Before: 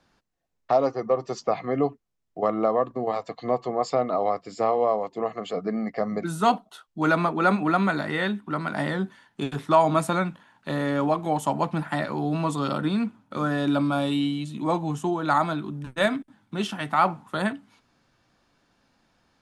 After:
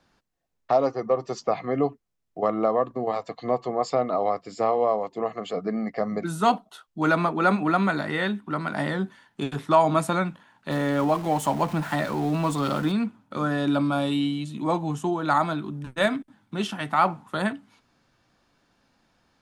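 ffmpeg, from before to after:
-filter_complex "[0:a]asettb=1/sr,asplit=3[a][b][c];[a]atrim=end=10.714[d];[b]atrim=start=10.71:end=12.92,asetpts=PTS-STARTPTS,afade=t=in:d=0.004:c=qsin,afade=t=out:st=2.206:d=0.004:c=qsin,aeval=exprs='val(0)+0.5*0.0178*sgn(val(0))':c=same[e];[c]atrim=start=12.916[f];[d][e]acrossfade=d=0.004:c1=hsin:c2=qsin[g];[g][f]acrossfade=d=0.004:c1=qsin:c2=hsin"

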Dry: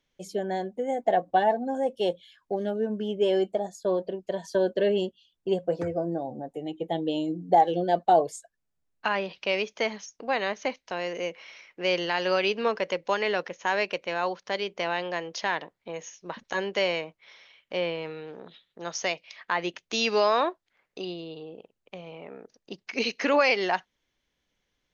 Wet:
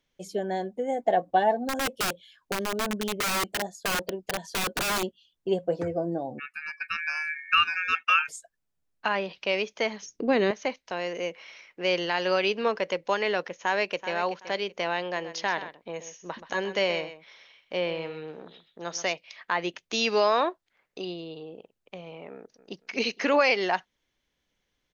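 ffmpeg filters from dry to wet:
-filter_complex "[0:a]asettb=1/sr,asplit=3[a][b][c];[a]atrim=end=1.564[d];[b]atrim=start=1.56:end=5.03,asetpts=PTS-STARTPTS,afade=t=in:d=0.004:c=qsin,afade=t=out:st=3.466:d=0.004:c=qsin,aeval=exprs='(mod(13.3*val(0)+1,2)-1)/13.3':c=same[e];[c]atrim=start=5.026[f];[d][e]acrossfade=d=0.004:c1=hsin:c2=qsin[g];[g][f]acrossfade=d=0.004:c1=qsin:c2=hsin,asplit=3[h][i][j];[h]afade=t=out:st=6.38:d=0.02[k];[i]aeval=exprs='val(0)*sin(2*PI*2000*n/s)':c=same,afade=t=in:st=6.38:d=0.02,afade=t=out:st=8.28:d=0.02[l];[j]afade=t=in:st=8.28:d=0.02[m];[k][l][m]amix=inputs=3:normalize=0,asettb=1/sr,asplit=3[n][o][p];[n]atrim=end=10.024[q];[o]atrim=start=10.02:end=10.51,asetpts=PTS-STARTPTS,afade=t=in:d=0.004:c=qsin,afade=t=out:st=0.486:d=0.004:c=qsin,lowshelf=f=520:t=q:w=1.5:g=11[r];[p]atrim=start=10.506[s];[q][r]acrossfade=d=0.004:c1=hsin:c2=qsin[t];[t][s]acrossfade=d=0.004:c1=qsin:c2=hsin,asplit=2[u][v];[v]afade=t=in:st=13.54:d=0.01,afade=t=out:st=14.14:d=0.01,aecho=0:1:380|760|1140:0.251189|0.0627972|0.0156993[w];[u][w]amix=inputs=2:normalize=0,asettb=1/sr,asplit=3[x][y][z];[x]atrim=end=15.034[aa];[y]atrim=start=15.03:end=19.13,asetpts=PTS-STARTPTS,afade=t=in:d=0.004:c=qsin,afade=t=out:st=4.096:d=0.004:c=qsin,aecho=1:1:128:0.237,atrim=end_sample=180810[ab];[z]atrim=start=19.126[ac];[aa][ab]acrossfade=d=0.004:c1=hsin:c2=qsin[ad];[ad][ac]acrossfade=d=0.004:c1=qsin:c2=hsin,asplit=2[ae][af];[af]afade=t=in:st=22.35:d=0.01,afade=t=out:st=22.81:d=0.01,aecho=0:1:230|460|690:0.211349|0.0739721|0.0258902[ag];[ae][ag]amix=inputs=2:normalize=0"

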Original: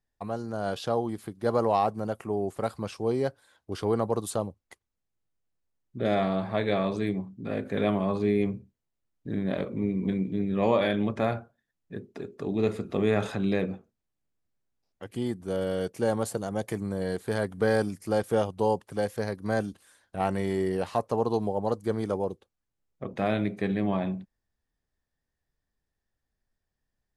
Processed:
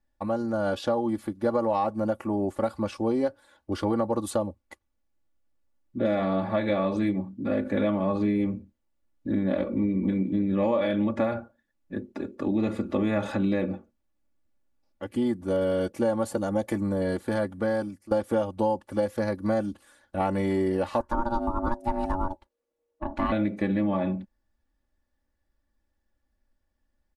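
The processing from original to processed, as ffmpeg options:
-filter_complex "[0:a]asettb=1/sr,asplit=3[a][b][c];[a]atrim=end=21.004[d];[b]atrim=start=21:end=23.32,asetpts=PTS-STARTPTS,afade=t=in:d=0.004:c=qsin,afade=t=out:st=2.316:d=0.004:c=qsin,aeval=exprs='val(0)*sin(2*PI*470*n/s)':c=same[e];[c]atrim=start=23.316[f];[d][e]acrossfade=d=0.004:c1=hsin:c2=qsin[g];[g][f]acrossfade=d=0.004:c1=qsin:c2=hsin,asplit=2[h][i];[h]atrim=end=18.11,asetpts=PTS-STARTPTS,afade=t=out:st=17.13:d=0.98:silence=0.133352[j];[i]atrim=start=18.11,asetpts=PTS-STARTPTS,afade=t=in:d=0.004:c=hsin:silence=0.133352[k];[j][k]concat=n=2:v=0:a=1,highshelf=f=2.4k:g=-8.5,aecho=1:1:3.5:0.84,acompressor=threshold=-26dB:ratio=5,volume=4.5dB"

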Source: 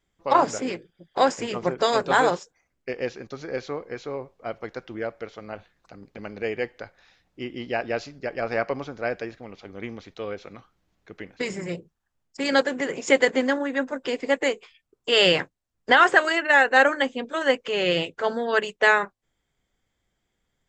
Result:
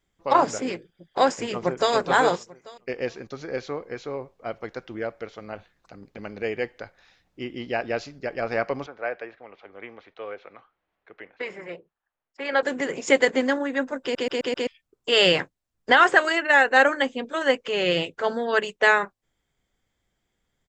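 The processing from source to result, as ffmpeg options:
-filter_complex "[0:a]asplit=2[a][b];[b]afade=t=in:st=1.35:d=0.01,afade=t=out:st=1.93:d=0.01,aecho=0:1:420|840|1260:0.316228|0.0790569|0.0197642[c];[a][c]amix=inputs=2:normalize=0,asettb=1/sr,asplit=3[d][e][f];[d]atrim=end=8.864[g];[e]atrim=start=8.86:end=12.63,asetpts=PTS-STARTPTS,afade=t=in:d=0.004:c=qsin,afade=t=out:st=3.766:d=0.004:c=qsin,acrossover=split=420 3100:gain=0.141 1 0.0631[h][i][j];[h][i][j]amix=inputs=3:normalize=0[k];[f]atrim=start=12.626[l];[g][k]acrossfade=d=0.004:c1=hsin:c2=qsin[m];[m][l]acrossfade=d=0.004:c1=qsin:c2=hsin,asplit=6[n][o][p][q][r][s];[n]atrim=end=14.152[t];[o]atrim=start=14.018:end=14.152[u];[p]atrim=start=14.018:end=14.152[v];[q]atrim=start=14.018:end=14.152[w];[r]atrim=start=14.018:end=14.152[x];[s]atrim=start=14.668[y];[t][u]acrossfade=d=0.004:c1=hsin:c2=hsin[z];[z][v]acrossfade=d=0.004:c1=hsin:c2=hsin[aa];[aa][w]acrossfade=d=0.004:c1=hsin:c2=hsin[ab];[ab][x]acrossfade=d=0.004:c1=hsin:c2=hsin[ac];[ac][y]acrossfade=d=0.004:c1=hsin:c2=hsin"

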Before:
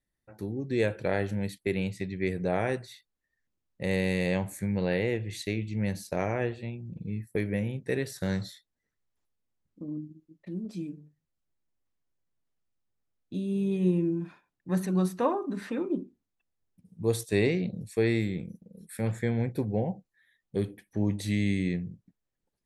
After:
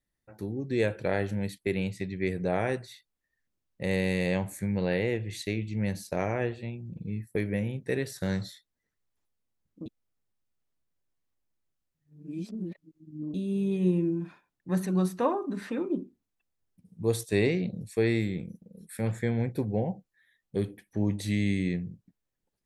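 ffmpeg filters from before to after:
-filter_complex "[0:a]asplit=3[a][b][c];[a]atrim=end=9.862[d];[b]atrim=start=9.858:end=13.342,asetpts=PTS-STARTPTS,areverse[e];[c]atrim=start=13.338[f];[d][e]acrossfade=d=0.004:c1=hsin:c2=hsin[g];[g][f]acrossfade=d=0.004:c1=hsin:c2=hsin"

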